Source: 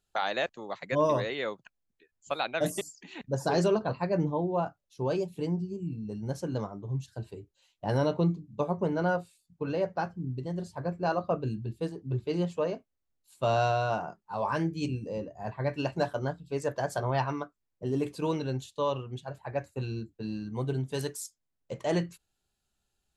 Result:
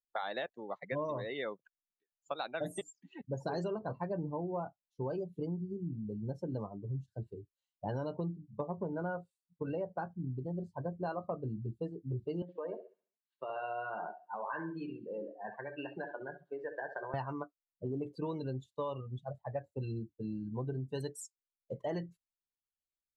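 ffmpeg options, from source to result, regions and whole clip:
-filter_complex "[0:a]asettb=1/sr,asplit=3[a][b][c];[a]atrim=end=12.424[d];[b]atrim=start=12.42:end=17.14,asetpts=PTS-STARTPTS,afade=t=in:d=0.004:c=qsin,afade=t=out:st=4.716:d=0.004:c=qsin,acompressor=threshold=-30dB:ratio=10:attack=3.2:release=140:knee=1:detection=peak,highpass=f=200:w=0.5412,highpass=f=200:w=1.3066,equalizer=f=250:t=q:w=4:g=-9,equalizer=f=600:t=q:w=4:g=-4,equalizer=f=1.7k:t=q:w=4:g=8,equalizer=f=2.4k:t=q:w=4:g=3,lowpass=f=3.7k:w=0.5412,lowpass=f=3.7k:w=1.3066,aecho=1:1:67|134|201|268|335|402:0.376|0.203|0.11|0.0592|0.032|0.0173,atrim=end_sample=208152[e];[c]atrim=start=17.136[f];[d][e]acrossfade=d=0.004:c1=hsin:c2=qsin[g];[g][f]acrossfade=d=0.004:c1=qsin:c2=hsin,asettb=1/sr,asplit=3[h][i][j];[h]atrim=end=19.004[k];[i]atrim=start=19:end=19.6,asetpts=PTS-STARTPTS,afade=t=in:d=0.004:c=qsin,afade=t=out:st=0.596:d=0.004:c=qsin,equalizer=f=380:t=o:w=0.36:g=-4.5,aecho=1:1:1.6:0.34,atrim=end_sample=26460[l];[j]atrim=start=19.596[m];[k][l]acrossfade=d=0.004:c1=hsin:c2=qsin[n];[n][m]acrossfade=d=0.004:c1=qsin:c2=hsin,afftdn=nr=24:nf=-38,bandreject=f=2.5k:w=8.3,acompressor=threshold=-31dB:ratio=6,volume=-2.5dB"

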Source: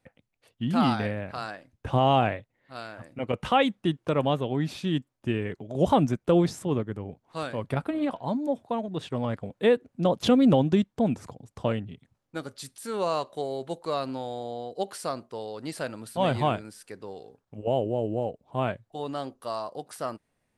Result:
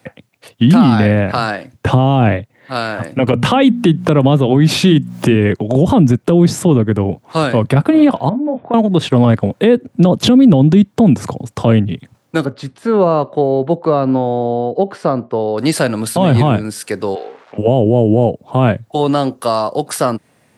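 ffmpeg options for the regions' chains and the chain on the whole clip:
-filter_complex "[0:a]asettb=1/sr,asplit=3[a][b][c];[a]atrim=end=3.274[d];[b]atrim=start=3.27:end=5.36,asetpts=PTS-STARTPTS,afade=t=in:d=0.004:c=qsin,afade=t=out:st=2.086:d=0.004:c=qsin,highpass=46,bandreject=f=60:t=h:w=6,bandreject=f=120:t=h:w=6,bandreject=f=180:t=h:w=6,bandreject=f=240:t=h:w=6,acompressor=mode=upward:threshold=-26dB:ratio=2.5:attack=3.2:release=140:knee=2.83:detection=peak[e];[c]atrim=start=5.356[f];[d][e]acrossfade=d=0.004:c1=hsin:c2=qsin[g];[g][f]acrossfade=d=0.004:c1=qsin:c2=hsin,asettb=1/sr,asplit=3[h][i][j];[h]atrim=end=8.294[k];[i]atrim=start=8.29:end=8.74,asetpts=PTS-STARTPTS,afade=t=in:d=0.004:c=qsin,afade=t=out:st=0.446:d=0.004:c=qsin,lowpass=f=2.3k:w=0.5412,lowpass=f=2.3k:w=1.3066,asplit=2[l][m];[m]adelay=24,volume=-6dB[n];[l][n]amix=inputs=2:normalize=0,atrim=end_sample=19845,acompressor=threshold=-42dB:ratio=2.5:attack=3.2:release=140:knee=1:detection=peak[o];[j]atrim=start=8.736[p];[k][o]acrossfade=d=0.004:c1=hsin:c2=qsin[q];[q][p]acrossfade=d=0.004:c1=qsin:c2=hsin,asettb=1/sr,asplit=3[r][s][t];[r]atrim=end=12.454[u];[s]atrim=start=12.45:end=15.58,asetpts=PTS-STARTPTS,afade=t=in:d=0.004:c=qsin,afade=t=out:st=3.126:d=0.004:c=qsin,lowpass=f=1.1k:p=1,aemphasis=mode=reproduction:type=50kf[v];[t]atrim=start=15.576[w];[u][v]acrossfade=d=0.004:c1=hsin:c2=qsin[x];[x][w]acrossfade=d=0.004:c1=qsin:c2=hsin,asettb=1/sr,asplit=3[y][z][aa];[y]atrim=end=17.154[ab];[z]atrim=start=17.15:end=17.58,asetpts=PTS-STARTPTS,afade=t=in:d=0.004:c=qsin,afade=t=out:st=0.426:d=0.004:c=qsin,aeval=exprs='val(0)+0.5*0.00178*sgn(val(0))':c=same,highpass=550,lowpass=2.7k[ac];[aa]atrim=start=17.576[ad];[ab][ac]acrossfade=d=0.004:c1=hsin:c2=qsin[ae];[ae][ad]acrossfade=d=0.004:c1=qsin:c2=hsin,acrossover=split=330[af][ag];[ag]acompressor=threshold=-39dB:ratio=2[ah];[af][ah]amix=inputs=2:normalize=0,highpass=f=92:w=0.5412,highpass=f=92:w=1.3066,alimiter=level_in=23dB:limit=-1dB:release=50:level=0:latency=1,volume=-1dB"

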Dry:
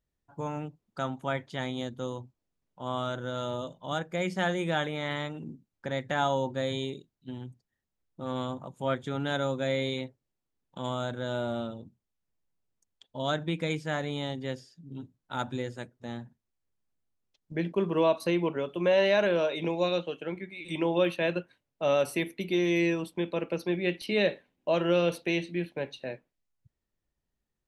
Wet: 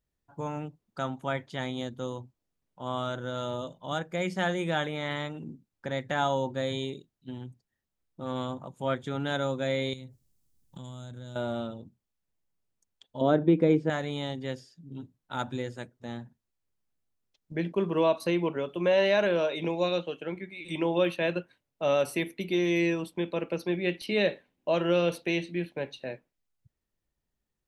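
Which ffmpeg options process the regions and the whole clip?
-filter_complex "[0:a]asettb=1/sr,asplit=3[a][b][c];[a]atrim=end=9.934[d];[b]atrim=start=9.93:end=11.36,asetpts=PTS-STARTPTS,afade=t=in:d=0.004:c=qsin,afade=t=out:st=1.426:d=0.004:c=qsin,bass=f=250:g=15,treble=f=4k:g=15,acompressor=threshold=-39dB:ratio=16:attack=3.2:release=140:knee=1:detection=peak[e];[c]atrim=start=11.356[f];[d][e]acrossfade=d=0.004:c1=hsin:c2=qsin[g];[g][f]acrossfade=d=0.004:c1=qsin:c2=hsin,asettb=1/sr,asplit=3[h][i][j];[h]atrim=end=13.214[k];[i]atrim=start=13.21:end=13.9,asetpts=PTS-STARTPTS,afade=t=in:d=0.004:c=qsin,afade=t=out:st=0.686:d=0.004:c=qsin,lowpass=f=1.3k:p=1,equalizer=f=360:t=o:w=1.8:g=13[l];[j]atrim=start=13.896[m];[k][l]acrossfade=d=0.004:c1=hsin:c2=qsin[n];[n][m]acrossfade=d=0.004:c1=qsin:c2=hsin"

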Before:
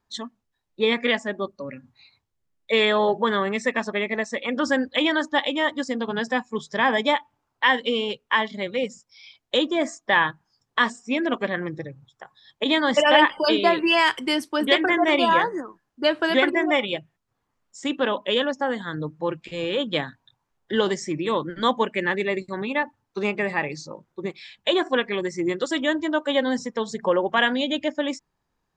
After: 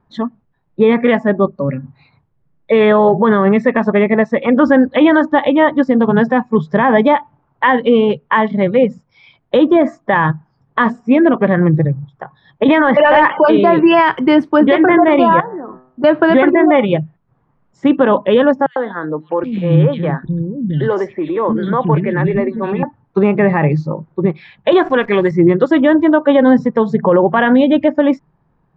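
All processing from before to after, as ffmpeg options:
-filter_complex "[0:a]asettb=1/sr,asplit=3[a][b][c];[a]atrim=end=12.684[d];[b]atrim=start=12.68:end=13.48,asetpts=PTS-STARTPTS,afade=t=in:d=0.004:c=qsin,afade=t=out:st=0.796:d=0.004:c=qsin,lowpass=f=2.7k:w=0.5412,lowpass=f=2.7k:w=1.3066,aemphasis=mode=production:type=riaa,acontrast=78[e];[c]atrim=start=13.476[f];[d][e]acrossfade=d=0.004:c1=hsin:c2=qsin[g];[g][f]acrossfade=d=0.004:c1=qsin:c2=hsin,asettb=1/sr,asplit=3[h][i][j];[h]atrim=end=15.404[k];[i]atrim=start=15.4:end=16.04,asetpts=PTS-STARTPTS,afade=t=in:d=0.004:c=qsin,afade=t=out:st=0.636:d=0.004:c=qsin,bandreject=f=127.6:t=h:w=4,bandreject=f=255.2:t=h:w=4,bandreject=f=382.8:t=h:w=4,bandreject=f=510.4:t=h:w=4,bandreject=f=638:t=h:w=4,bandreject=f=765.6:t=h:w=4,bandreject=f=893.2:t=h:w=4,bandreject=f=1.0208k:t=h:w=4,bandreject=f=1.1484k:t=h:w=4,bandreject=f=1.276k:t=h:w=4,bandreject=f=1.4036k:t=h:w=4,bandreject=f=1.5312k:t=h:w=4,bandreject=f=1.6588k:t=h:w=4,bandreject=f=1.7864k:t=h:w=4,bandreject=f=1.914k:t=h:w=4,acompressor=threshold=-40dB:ratio=5:attack=3.2:release=140:knee=1:detection=peak,equalizer=f=700:w=2.7:g=8[l];[j]atrim=start=16.036[m];[k][l]acrossfade=d=0.004:c1=hsin:c2=qsin[n];[n][m]acrossfade=d=0.004:c1=qsin:c2=hsin,asettb=1/sr,asplit=3[o][p][q];[o]atrim=end=18.664[r];[p]atrim=start=18.66:end=22.83,asetpts=PTS-STARTPTS,afade=t=in:d=0.004:c=qsin,afade=t=out:st=4.166:d=0.004:c=qsin,lowpass=7.7k,acompressor=threshold=-26dB:ratio=2.5:attack=3.2:release=140:knee=1:detection=peak,acrossover=split=290|2700[s][t][u];[t]adelay=100[v];[s]adelay=770[w];[w][v][u]amix=inputs=3:normalize=0,atrim=end_sample=183897[x];[q]atrim=start=22.826[y];[r][x]acrossfade=d=0.004:c1=hsin:c2=qsin[z];[z][y]acrossfade=d=0.004:c1=qsin:c2=hsin,asettb=1/sr,asplit=3[aa][ab][ac];[aa]atrim=end=24.724[ad];[ab]atrim=start=24.72:end=25.31,asetpts=PTS-STARTPTS,afade=t=in:d=0.004:c=qsin,afade=t=out:st=0.586:d=0.004:c=qsin,highpass=f=270:p=1,highshelf=f=2.8k:g=10.5,acrusher=bits=8:dc=4:mix=0:aa=0.000001[ae];[ac]atrim=start=25.306[af];[ad][ae]acrossfade=d=0.004:c1=hsin:c2=qsin[ag];[ag][af]acrossfade=d=0.004:c1=qsin:c2=hsin,lowpass=1.3k,equalizer=f=150:t=o:w=0.63:g=11.5,alimiter=level_in=15.5dB:limit=-1dB:release=50:level=0:latency=1,volume=-1dB"

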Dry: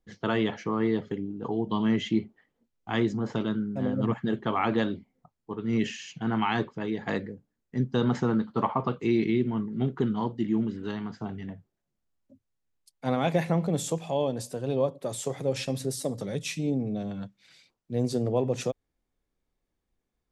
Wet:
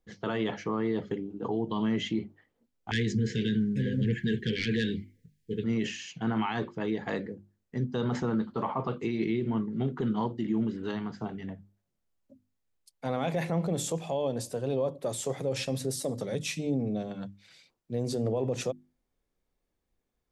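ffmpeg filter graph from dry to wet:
-filter_complex "[0:a]asettb=1/sr,asplit=3[a][b][c];[a]atrim=end=2.914[d];[b]atrim=start=2.91:end=5.64,asetpts=PTS-STARTPTS,afade=t=in:d=0.004:c=qsin,afade=t=out:st=2.726:d=0.004:c=qsin,equalizer=f=320:t=o:w=0.89:g=-12,aeval=exprs='0.188*sin(PI/2*1.78*val(0)/0.188)':c=same,asuperstop=centerf=880:order=20:qfactor=0.78[e];[c]atrim=start=5.636[f];[d][e]acrossfade=d=0.004:c1=hsin:c2=qsin[g];[g][f]acrossfade=d=0.004:c1=qsin:c2=hsin,equalizer=f=520:t=o:w=0.77:g=2,alimiter=limit=-20.5dB:level=0:latency=1:release=23,bandreject=f=50:t=h:w=6,bandreject=f=100:t=h:w=6,bandreject=f=150:t=h:w=6,bandreject=f=200:t=h:w=6,bandreject=f=250:t=h:w=6,bandreject=f=300:t=h:w=6,bandreject=f=350:t=h:w=6"

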